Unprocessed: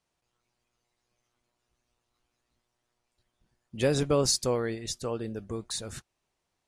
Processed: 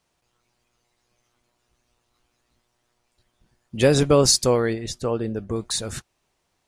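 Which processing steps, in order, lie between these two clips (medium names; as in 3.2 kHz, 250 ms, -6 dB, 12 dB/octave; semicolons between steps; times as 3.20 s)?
4.73–5.56 s: treble shelf 2.9 kHz -8.5 dB; trim +8.5 dB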